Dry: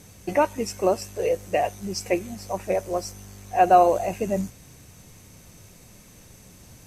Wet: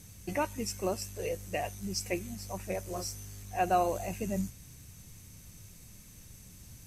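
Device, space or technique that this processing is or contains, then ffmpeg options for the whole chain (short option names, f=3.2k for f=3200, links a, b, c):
smiley-face EQ: -filter_complex "[0:a]asettb=1/sr,asplit=3[a][b][c];[a]atrim=end=2.844[d];[b]atrim=start=2.84:end=3.43,asetpts=PTS-STARTPTS,afade=t=in:d=0.004:c=qsin,afade=t=out:st=0.586:d=0.004:c=qsin,asplit=2[e][f];[f]adelay=33,volume=-4dB[g];[e][g]amix=inputs=2:normalize=0,atrim=end_sample=26019[h];[c]atrim=start=3.426[i];[d][h]acrossfade=d=0.004:c1=hsin:c2=qsin[j];[j][i]acrossfade=d=0.004:c1=qsin:c2=hsin,lowshelf=f=170:g=6,equalizer=f=580:t=o:w=2.2:g=-7.5,highshelf=f=7k:g=6,volume=-5.5dB"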